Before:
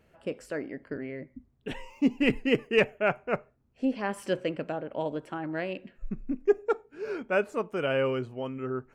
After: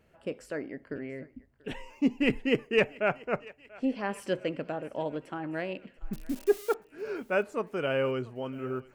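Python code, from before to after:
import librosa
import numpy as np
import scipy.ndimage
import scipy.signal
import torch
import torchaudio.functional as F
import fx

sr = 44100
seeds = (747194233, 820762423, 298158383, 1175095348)

p1 = fx.crossing_spikes(x, sr, level_db=-28.5, at=(6.13, 6.74))
p2 = p1 + fx.echo_thinned(p1, sr, ms=687, feedback_pct=63, hz=500.0, wet_db=-21, dry=0)
y = p2 * 10.0 ** (-1.5 / 20.0)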